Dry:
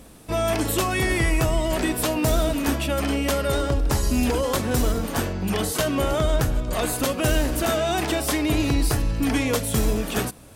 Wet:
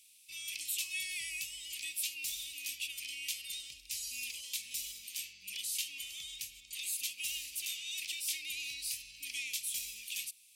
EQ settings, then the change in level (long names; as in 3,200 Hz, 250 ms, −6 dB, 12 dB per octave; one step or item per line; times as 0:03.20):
elliptic high-pass filter 2,400 Hz, stop band 40 dB
−7.0 dB